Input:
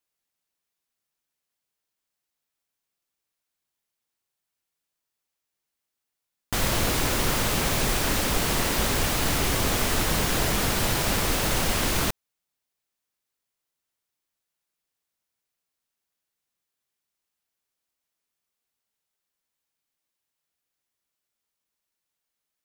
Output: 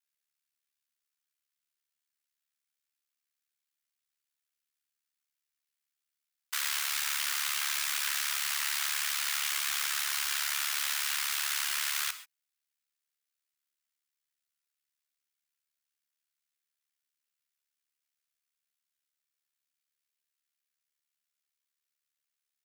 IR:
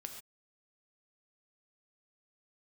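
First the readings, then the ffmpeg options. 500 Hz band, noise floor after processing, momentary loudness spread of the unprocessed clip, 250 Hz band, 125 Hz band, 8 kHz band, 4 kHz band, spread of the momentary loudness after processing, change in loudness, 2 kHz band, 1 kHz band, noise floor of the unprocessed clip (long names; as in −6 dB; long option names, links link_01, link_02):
−32.5 dB, below −85 dBFS, 1 LU, below −40 dB, below −40 dB, −4.0 dB, −3.5 dB, 1 LU, −5.5 dB, −4.0 dB, −11.5 dB, −85 dBFS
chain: -filter_complex "[0:a]highpass=frequency=1300:width=0.5412,highpass=frequency=1300:width=1.3066,aeval=exprs='val(0)*sin(2*PI*36*n/s)':channel_layout=same,asplit=2[link_01][link_02];[1:a]atrim=start_sample=2205[link_03];[link_02][link_03]afir=irnorm=-1:irlink=0,volume=2.5dB[link_04];[link_01][link_04]amix=inputs=2:normalize=0,volume=-6dB"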